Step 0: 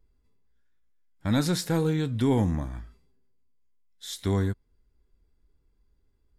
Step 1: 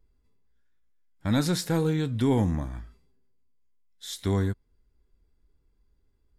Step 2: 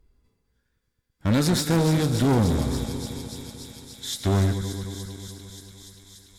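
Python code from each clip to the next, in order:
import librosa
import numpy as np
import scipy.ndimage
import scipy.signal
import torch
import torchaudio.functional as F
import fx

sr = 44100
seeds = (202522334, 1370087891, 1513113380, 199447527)

y1 = x
y2 = fx.reverse_delay_fb(y1, sr, ms=110, feedback_pct=81, wet_db=-13.0)
y2 = fx.echo_wet_highpass(y2, sr, ms=290, feedback_pct=82, hz=3800.0, wet_db=-6.5)
y2 = fx.clip_asym(y2, sr, top_db=-28.5, bottom_db=-18.5)
y2 = y2 * librosa.db_to_amplitude(6.0)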